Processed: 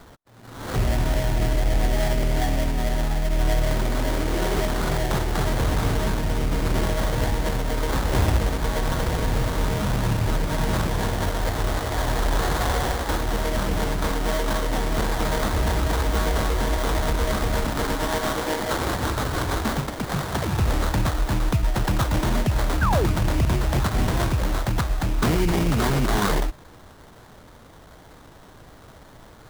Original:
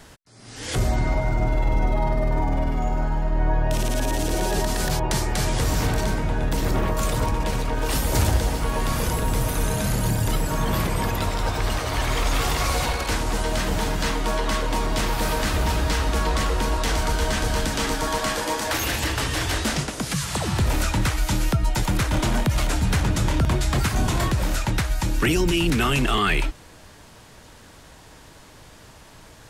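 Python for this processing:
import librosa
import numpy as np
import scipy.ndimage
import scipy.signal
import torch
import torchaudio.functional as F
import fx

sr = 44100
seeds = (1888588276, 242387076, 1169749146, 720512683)

y = fx.formant_shift(x, sr, semitones=-3)
y = fx.sample_hold(y, sr, seeds[0], rate_hz=2600.0, jitter_pct=20)
y = fx.spec_paint(y, sr, seeds[1], shape='fall', start_s=22.81, length_s=0.26, low_hz=300.0, high_hz=1700.0, level_db=-24.0)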